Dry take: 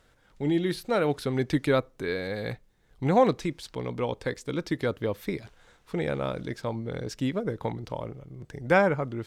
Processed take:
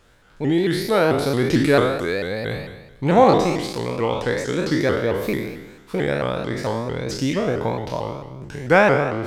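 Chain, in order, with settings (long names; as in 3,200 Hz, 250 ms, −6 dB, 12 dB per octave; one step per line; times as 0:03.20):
peak hold with a decay on every bin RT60 1.07 s
pitch modulation by a square or saw wave saw up 4.5 Hz, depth 160 cents
level +5 dB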